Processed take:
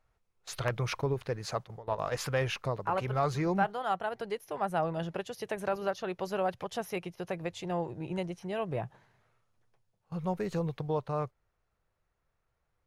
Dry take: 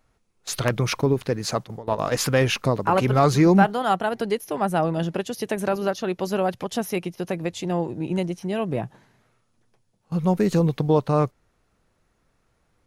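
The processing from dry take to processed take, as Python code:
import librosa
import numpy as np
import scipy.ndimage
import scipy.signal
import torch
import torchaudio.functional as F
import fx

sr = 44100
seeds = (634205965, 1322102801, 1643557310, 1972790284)

y = fx.high_shelf(x, sr, hz=3700.0, db=-9.0)
y = fx.rider(y, sr, range_db=3, speed_s=2.0)
y = fx.peak_eq(y, sr, hz=250.0, db=-11.5, octaves=1.1)
y = y * librosa.db_to_amplitude(-7.0)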